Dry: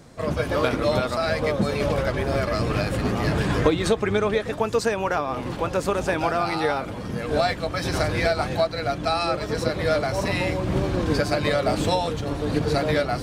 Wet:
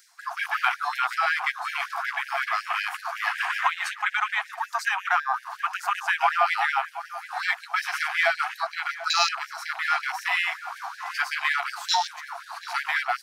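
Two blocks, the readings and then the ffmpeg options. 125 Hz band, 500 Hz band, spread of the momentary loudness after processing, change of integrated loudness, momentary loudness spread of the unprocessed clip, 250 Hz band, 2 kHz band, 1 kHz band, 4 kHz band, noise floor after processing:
below −40 dB, −16.5 dB, 10 LU, −2.0 dB, 4 LU, below −40 dB, +5.0 dB, +1.5 dB, +0.5 dB, −47 dBFS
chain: -filter_complex "[0:a]afwtdn=0.0282,asubboost=boost=6:cutoff=150,areverse,acompressor=mode=upward:threshold=-21dB:ratio=2.5,areverse,aexciter=amount=2.1:drive=3.9:freq=4700,asplit=2[link_01][link_02];[link_02]adelay=727,lowpass=frequency=1400:poles=1,volume=-12dB,asplit=2[link_03][link_04];[link_04]adelay=727,lowpass=frequency=1400:poles=1,volume=0.37,asplit=2[link_05][link_06];[link_06]adelay=727,lowpass=frequency=1400:poles=1,volume=0.37,asplit=2[link_07][link_08];[link_08]adelay=727,lowpass=frequency=1400:poles=1,volume=0.37[link_09];[link_03][link_05][link_07][link_09]amix=inputs=4:normalize=0[link_10];[link_01][link_10]amix=inputs=2:normalize=0,afftfilt=real='re*gte(b*sr/1024,650*pow(1600/650,0.5+0.5*sin(2*PI*5.4*pts/sr)))':imag='im*gte(b*sr/1024,650*pow(1600/650,0.5+0.5*sin(2*PI*5.4*pts/sr)))':win_size=1024:overlap=0.75,volume=6.5dB"

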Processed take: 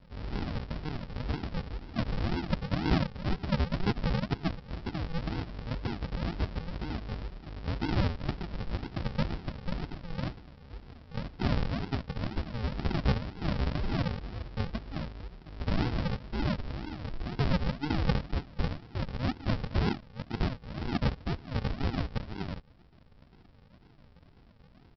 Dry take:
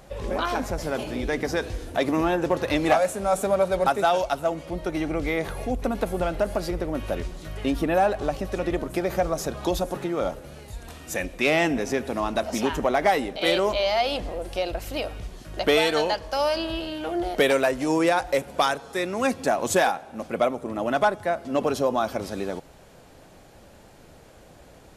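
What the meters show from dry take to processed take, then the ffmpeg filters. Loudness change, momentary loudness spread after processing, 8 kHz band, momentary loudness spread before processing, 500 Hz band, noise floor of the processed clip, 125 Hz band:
−9.0 dB, 9 LU, below −25 dB, 9 LU, −17.0 dB, −57 dBFS, +4.5 dB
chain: -af "equalizer=frequency=230:width_type=o:width=0.77:gain=-2,aresample=11025,acrusher=samples=26:mix=1:aa=0.000001:lfo=1:lforange=15.6:lforate=2,aresample=44100,volume=-6.5dB"

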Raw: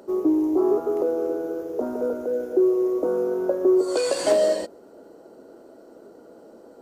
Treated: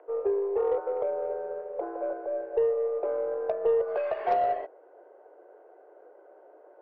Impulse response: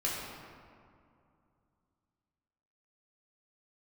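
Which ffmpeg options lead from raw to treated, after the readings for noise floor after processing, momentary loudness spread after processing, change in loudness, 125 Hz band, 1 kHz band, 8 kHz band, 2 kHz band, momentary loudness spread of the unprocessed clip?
−55 dBFS, 9 LU, −6.5 dB, can't be measured, +4.0 dB, below −40 dB, −5.5 dB, 9 LU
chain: -af "highpass=frequency=260:width_type=q:width=0.5412,highpass=frequency=260:width_type=q:width=1.307,lowpass=frequency=2400:width_type=q:width=0.5176,lowpass=frequency=2400:width_type=q:width=0.7071,lowpass=frequency=2400:width_type=q:width=1.932,afreqshift=88,aeval=exprs='0.422*(cos(1*acos(clip(val(0)/0.422,-1,1)))-cos(1*PI/2))+0.0211*(cos(6*acos(clip(val(0)/0.422,-1,1)))-cos(6*PI/2))+0.0168*(cos(8*acos(clip(val(0)/0.422,-1,1)))-cos(8*PI/2))':channel_layout=same,volume=-6dB"

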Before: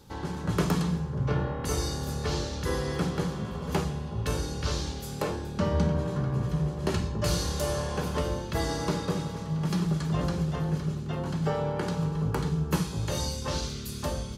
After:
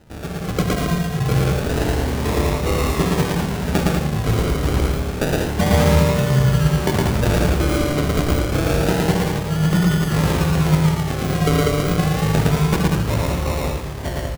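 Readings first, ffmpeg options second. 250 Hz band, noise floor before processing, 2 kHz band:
+10.5 dB, −37 dBFS, +13.0 dB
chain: -af "dynaudnorm=framelen=430:gausssize=7:maxgain=4dB,acrusher=samples=39:mix=1:aa=0.000001:lfo=1:lforange=23.4:lforate=0.28,aecho=1:1:113.7|195.3:0.891|0.501,volume=4dB"

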